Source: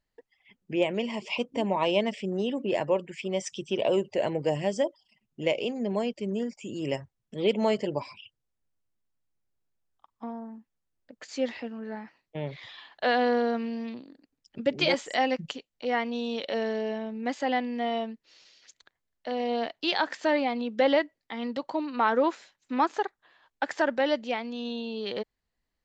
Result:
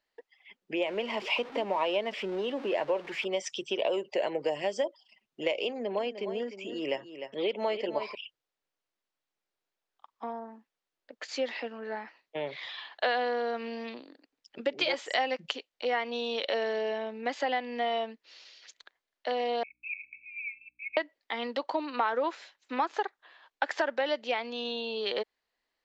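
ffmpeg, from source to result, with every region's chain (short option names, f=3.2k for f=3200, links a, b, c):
-filter_complex "[0:a]asettb=1/sr,asplit=3[a][b][c];[a]atrim=end=0.864[d];[b]atrim=start=0.86:end=3.25,asetpts=PTS-STARTPTS,afade=t=in:d=0.004:c=qsin,afade=t=out:st=2.386:d=0.004:c=qsin,aeval=exprs='val(0)+0.5*0.0119*sgn(val(0))':c=same,aemphasis=mode=reproduction:type=50fm[e];[c]atrim=start=3.246[f];[d][e]acrossfade=d=0.004:c1=hsin:c2=qsin[g];[g][f]acrossfade=d=0.004:c1=qsin:c2=hsin,asettb=1/sr,asplit=3[h][i][j];[h]atrim=end=5.674[k];[i]atrim=start=5.67:end=8.15,asetpts=PTS-STARTPTS,afade=t=in:d=0.004:c=qsin,afade=t=out:st=2.476:d=0.004:c=qsin,highpass=130,lowpass=4.4k,aecho=1:1:302:0.237,atrim=end_sample=109368[l];[j]atrim=start=8.146[m];[k][l]acrossfade=d=0.004:c1=hsin:c2=qsin[n];[n][m]acrossfade=d=0.004:c1=qsin:c2=hsin,asettb=1/sr,asplit=3[o][p][q];[o]atrim=end=19.634[r];[p]atrim=start=19.63:end=20.97,asetpts=PTS-STARTPTS,afade=t=in:d=0.004:c=qsin,afade=t=out:st=1.336:d=0.004:c=qsin,asuperpass=centerf=2400:order=20:qfactor=5.4,aeval=exprs='val(0)+0.000251*(sin(2*PI*60*n/s)+sin(2*PI*2*60*n/s)/2+sin(2*PI*3*60*n/s)/3+sin(2*PI*4*60*n/s)/4+sin(2*PI*5*60*n/s)/5)':c=same[s];[q]atrim=start=20.966[t];[r][s]acrossfade=d=0.004:c1=hsin:c2=qsin[u];[u][t]acrossfade=d=0.004:c1=qsin:c2=hsin,highshelf=f=4.8k:g=8.5,acompressor=threshold=-28dB:ratio=6,acrossover=split=330 4900:gain=0.1 1 0.126[v][w][x];[v][w][x]amix=inputs=3:normalize=0,volume=4dB"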